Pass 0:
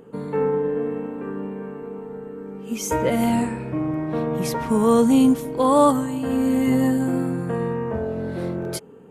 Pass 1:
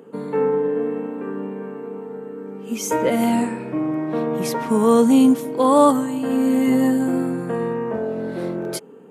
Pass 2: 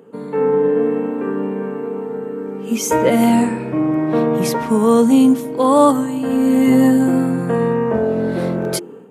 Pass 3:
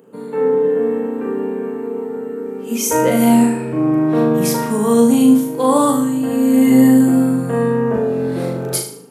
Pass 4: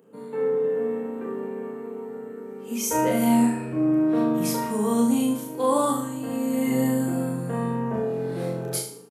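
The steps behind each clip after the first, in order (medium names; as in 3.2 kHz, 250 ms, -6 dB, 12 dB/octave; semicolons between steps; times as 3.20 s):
Chebyshev high-pass 230 Hz, order 2; trim +2.5 dB
level rider gain up to 8 dB; bass shelf 90 Hz +12 dB; hum notches 50/100/150/200/250/300/350 Hz; trim -1 dB
treble shelf 7 kHz +11 dB; on a send: flutter echo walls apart 6.6 m, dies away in 0.5 s; on the sum: trim -3.5 dB
doubling 29 ms -5 dB; trim -9 dB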